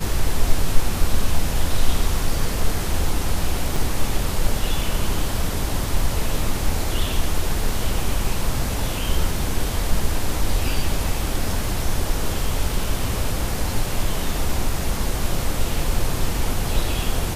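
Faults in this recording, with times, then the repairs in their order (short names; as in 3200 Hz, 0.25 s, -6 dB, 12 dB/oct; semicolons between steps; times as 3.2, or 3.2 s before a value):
3.76 gap 3.9 ms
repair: interpolate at 3.76, 3.9 ms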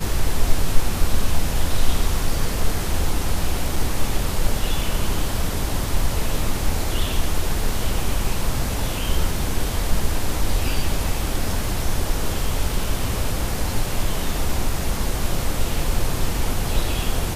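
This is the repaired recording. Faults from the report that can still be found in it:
none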